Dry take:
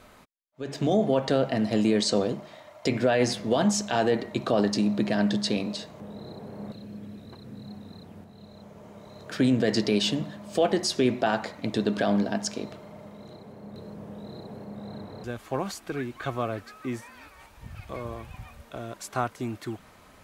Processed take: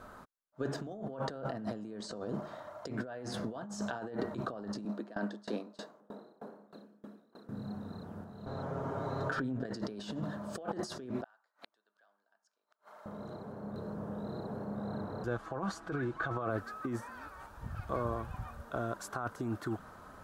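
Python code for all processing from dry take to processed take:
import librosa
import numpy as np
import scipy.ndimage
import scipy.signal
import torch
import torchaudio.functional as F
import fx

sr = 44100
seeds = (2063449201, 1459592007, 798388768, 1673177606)

y = fx.chain(x, sr, fx.highpass(hz=230.0, slope=24),
    fx.tremolo_decay(direction='decaying', hz=3.2, depth_db=27), at=(4.85, 7.49))
y = fx.chain(y, sr, fx.lowpass(hz=3400.0, slope=6),
    fx.over_compress(threshold_db=-32.0, ratio=-1.0),
    fx.comb(ms=7.4, depth=0.94), at=(8.46, 9.65))
y = fx.chain(y, sr, fx.highpass(hz=1100.0, slope=12),
    fx.gate_flip(shuts_db=-35.0, range_db=-38), at=(11.24, 13.06))
y = fx.chain(y, sr, fx.air_absorb(metres=60.0),
    fx.comb(ms=6.1, depth=0.42), at=(15.26, 16.5))
y = fx.over_compress(y, sr, threshold_db=-33.0, ratio=-1.0)
y = fx.high_shelf_res(y, sr, hz=1800.0, db=-6.5, q=3.0)
y = y * librosa.db_to_amplitude(-5.0)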